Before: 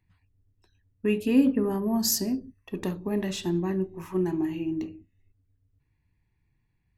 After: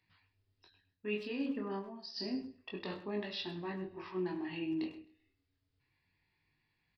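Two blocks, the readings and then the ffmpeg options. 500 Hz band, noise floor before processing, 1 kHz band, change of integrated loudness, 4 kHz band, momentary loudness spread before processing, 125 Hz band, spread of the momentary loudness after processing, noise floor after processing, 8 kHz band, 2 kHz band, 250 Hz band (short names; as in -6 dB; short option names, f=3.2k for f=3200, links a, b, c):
-10.5 dB, -73 dBFS, -7.5 dB, -12.5 dB, -8.0 dB, 12 LU, -14.5 dB, 7 LU, -82 dBFS, under -30 dB, -4.5 dB, -13.5 dB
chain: -filter_complex "[0:a]aemphasis=mode=production:type=riaa,areverse,acompressor=threshold=-37dB:ratio=6,areverse,flanger=delay=19:depth=6.7:speed=0.29,asplit=2[a][b];[b]aecho=0:1:131|262:0.0891|0.0232[c];[a][c]amix=inputs=2:normalize=0,aresample=11025,aresample=44100,asplit=2[d][e];[e]adelay=100,highpass=300,lowpass=3.4k,asoftclip=type=hard:threshold=-40dB,volume=-12dB[f];[d][f]amix=inputs=2:normalize=0,volume=4.5dB"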